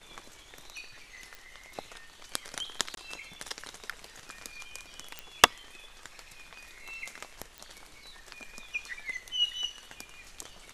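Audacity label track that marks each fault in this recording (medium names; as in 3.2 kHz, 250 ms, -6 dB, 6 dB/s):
1.350000	1.350000	pop
2.950000	2.970000	dropout 22 ms
5.190000	5.190000	pop -20 dBFS
7.580000	7.580000	pop -26 dBFS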